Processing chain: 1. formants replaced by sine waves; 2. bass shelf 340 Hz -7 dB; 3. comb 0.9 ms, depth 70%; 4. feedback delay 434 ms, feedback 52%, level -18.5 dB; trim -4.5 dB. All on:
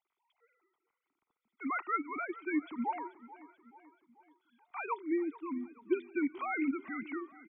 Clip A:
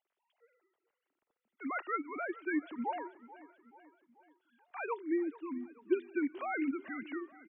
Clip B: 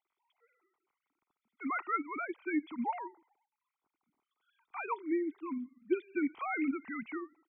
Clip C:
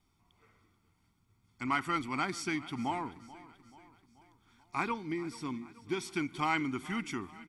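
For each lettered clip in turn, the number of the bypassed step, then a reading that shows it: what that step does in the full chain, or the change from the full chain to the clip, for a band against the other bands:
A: 3, 500 Hz band +2.0 dB; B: 4, echo-to-direct -17.0 dB to none; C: 1, 500 Hz band -4.5 dB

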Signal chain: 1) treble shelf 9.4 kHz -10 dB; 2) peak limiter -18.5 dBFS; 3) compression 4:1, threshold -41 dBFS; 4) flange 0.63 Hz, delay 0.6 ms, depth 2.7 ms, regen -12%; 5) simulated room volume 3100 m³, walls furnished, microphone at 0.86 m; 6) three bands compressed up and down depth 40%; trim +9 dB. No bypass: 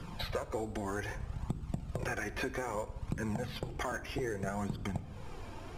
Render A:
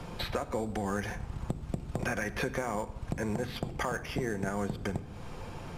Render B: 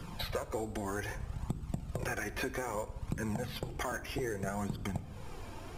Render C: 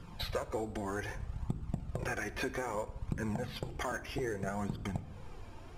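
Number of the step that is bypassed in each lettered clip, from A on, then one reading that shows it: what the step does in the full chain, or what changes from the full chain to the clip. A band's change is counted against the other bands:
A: 4, crest factor change +1.5 dB; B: 1, 8 kHz band +3.5 dB; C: 6, crest factor change +2.5 dB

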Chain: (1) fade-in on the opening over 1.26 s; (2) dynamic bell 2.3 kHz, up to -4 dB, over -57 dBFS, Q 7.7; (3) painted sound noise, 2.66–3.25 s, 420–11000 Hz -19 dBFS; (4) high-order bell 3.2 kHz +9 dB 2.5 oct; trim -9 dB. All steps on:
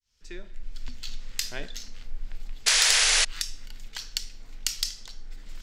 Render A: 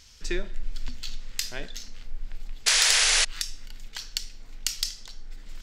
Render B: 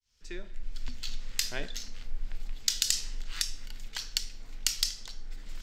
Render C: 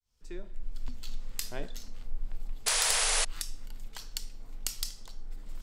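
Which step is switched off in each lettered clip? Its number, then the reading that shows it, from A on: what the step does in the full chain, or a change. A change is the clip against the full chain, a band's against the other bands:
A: 1, 500 Hz band +3.0 dB; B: 3, 1 kHz band -7.0 dB; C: 4, 500 Hz band +7.0 dB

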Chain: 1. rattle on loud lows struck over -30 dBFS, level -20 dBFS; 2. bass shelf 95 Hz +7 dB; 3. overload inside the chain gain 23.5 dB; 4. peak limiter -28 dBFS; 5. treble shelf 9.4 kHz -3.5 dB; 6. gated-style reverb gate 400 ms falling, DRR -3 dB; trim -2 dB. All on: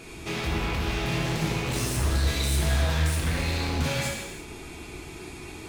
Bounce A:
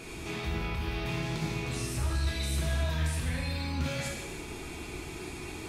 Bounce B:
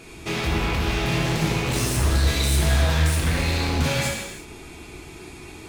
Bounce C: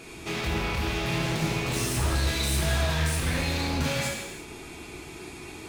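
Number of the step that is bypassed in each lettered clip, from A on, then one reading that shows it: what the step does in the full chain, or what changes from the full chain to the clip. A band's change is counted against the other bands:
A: 3, distortion -5 dB; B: 4, mean gain reduction 3.0 dB; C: 2, 125 Hz band -2.5 dB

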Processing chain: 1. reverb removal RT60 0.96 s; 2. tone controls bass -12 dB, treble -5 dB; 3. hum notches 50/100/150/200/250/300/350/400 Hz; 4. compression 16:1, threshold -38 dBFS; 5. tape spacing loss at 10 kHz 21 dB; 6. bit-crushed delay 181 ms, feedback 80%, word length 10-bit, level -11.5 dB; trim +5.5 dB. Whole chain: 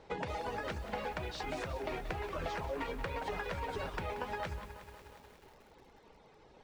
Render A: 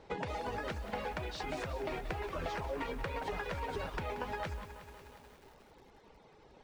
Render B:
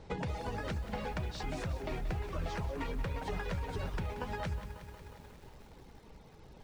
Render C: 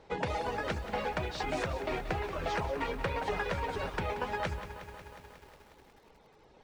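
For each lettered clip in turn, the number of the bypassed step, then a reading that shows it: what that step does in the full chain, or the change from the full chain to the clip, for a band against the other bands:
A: 3, momentary loudness spread change +1 LU; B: 2, 125 Hz band +8.5 dB; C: 4, mean gain reduction 2.5 dB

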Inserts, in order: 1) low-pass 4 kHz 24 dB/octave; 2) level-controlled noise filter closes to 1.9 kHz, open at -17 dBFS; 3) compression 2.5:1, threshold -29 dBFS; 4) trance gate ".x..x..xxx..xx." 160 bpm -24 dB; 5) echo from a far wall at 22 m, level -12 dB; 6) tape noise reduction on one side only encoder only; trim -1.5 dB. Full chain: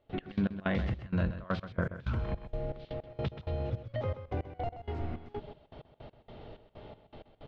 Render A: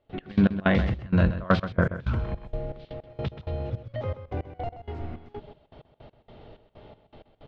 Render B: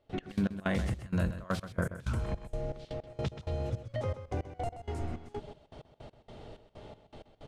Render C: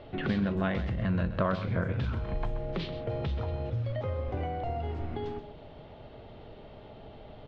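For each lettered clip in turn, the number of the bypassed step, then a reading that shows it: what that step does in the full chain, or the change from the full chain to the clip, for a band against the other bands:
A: 3, mean gain reduction 3.5 dB; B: 1, 4 kHz band +1.5 dB; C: 4, loudness change +3.5 LU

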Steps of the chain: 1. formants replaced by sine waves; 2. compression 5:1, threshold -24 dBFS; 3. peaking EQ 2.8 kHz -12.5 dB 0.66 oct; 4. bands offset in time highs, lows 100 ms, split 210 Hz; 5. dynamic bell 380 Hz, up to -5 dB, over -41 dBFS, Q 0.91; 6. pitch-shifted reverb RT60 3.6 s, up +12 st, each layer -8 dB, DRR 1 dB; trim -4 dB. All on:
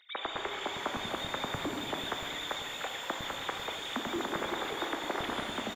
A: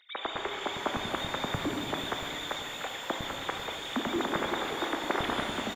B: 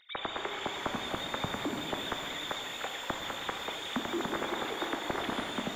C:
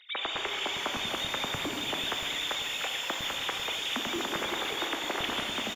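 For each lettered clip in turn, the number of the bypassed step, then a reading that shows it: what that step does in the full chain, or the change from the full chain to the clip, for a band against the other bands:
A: 2, mean gain reduction 1.5 dB; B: 4, 250 Hz band +2.0 dB; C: 3, 4 kHz band +6.5 dB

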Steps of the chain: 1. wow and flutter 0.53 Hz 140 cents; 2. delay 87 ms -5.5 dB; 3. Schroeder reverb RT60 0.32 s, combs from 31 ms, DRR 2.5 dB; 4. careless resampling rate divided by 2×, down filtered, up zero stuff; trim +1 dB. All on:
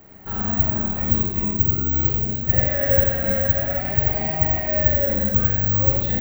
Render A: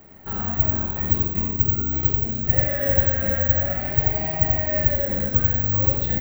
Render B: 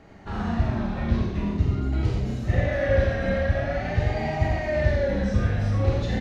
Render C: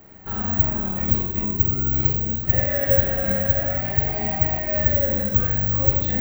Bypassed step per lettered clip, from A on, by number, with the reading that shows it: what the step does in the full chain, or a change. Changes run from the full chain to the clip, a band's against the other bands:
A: 3, loudness change -1.5 LU; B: 4, crest factor change -3.0 dB; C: 2, loudness change -1.0 LU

